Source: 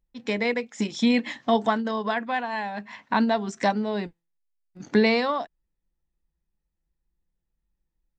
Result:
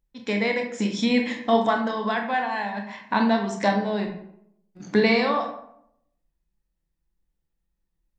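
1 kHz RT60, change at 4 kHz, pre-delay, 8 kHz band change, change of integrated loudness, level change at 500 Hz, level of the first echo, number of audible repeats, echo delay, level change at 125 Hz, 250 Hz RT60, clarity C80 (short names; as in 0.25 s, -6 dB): 0.70 s, +1.5 dB, 20 ms, n/a, +1.5 dB, +1.5 dB, none, none, none, +2.5 dB, 0.80 s, 10.0 dB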